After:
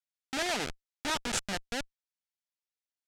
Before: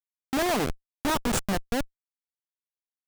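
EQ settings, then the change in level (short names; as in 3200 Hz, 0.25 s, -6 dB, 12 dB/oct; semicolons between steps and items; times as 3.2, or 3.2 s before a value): LPF 7400 Hz 12 dB/oct; tilt shelf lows -6.5 dB; notch 1100 Hz, Q 5.6; -5.5 dB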